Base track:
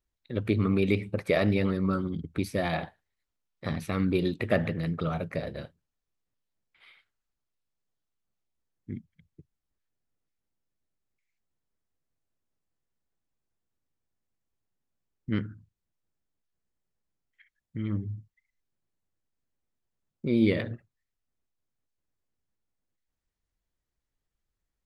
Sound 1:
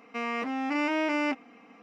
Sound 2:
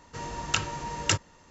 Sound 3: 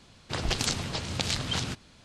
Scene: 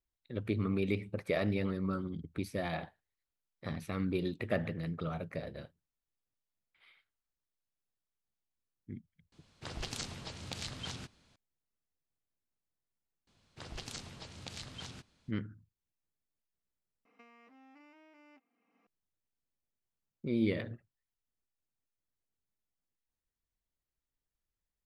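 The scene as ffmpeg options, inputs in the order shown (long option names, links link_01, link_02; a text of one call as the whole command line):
ffmpeg -i bed.wav -i cue0.wav -i cue1.wav -i cue2.wav -filter_complex "[3:a]asplit=2[link_01][link_02];[0:a]volume=-7.5dB[link_03];[link_01]asoftclip=type=hard:threshold=-10.5dB[link_04];[1:a]acompressor=threshold=-42dB:ratio=6:attack=32:release=465:knee=1:detection=rms[link_05];[link_03]asplit=2[link_06][link_07];[link_06]atrim=end=17.054[link_08];[link_05]atrim=end=1.82,asetpts=PTS-STARTPTS,volume=-17dB[link_09];[link_07]atrim=start=18.866[link_10];[link_04]atrim=end=2.04,asetpts=PTS-STARTPTS,volume=-12dB,afade=type=in:duration=0.004:curve=hsin,afade=type=out:start_time=2.036:duration=0.004:curve=hsin,adelay=9320[link_11];[link_02]atrim=end=2.04,asetpts=PTS-STARTPTS,volume=-16dB,afade=type=in:duration=0.004:curve=hsin,afade=type=out:start_time=2.036:duration=0.004:curve=hsin,adelay=13270[link_12];[link_08][link_09]acrossfade=duration=0.004:curve1=hsin:curve2=hsin[link_13];[link_13][link_10]acrossfade=duration=0.004:curve1=hsin:curve2=hsin[link_14];[link_14][link_11][link_12]amix=inputs=3:normalize=0" out.wav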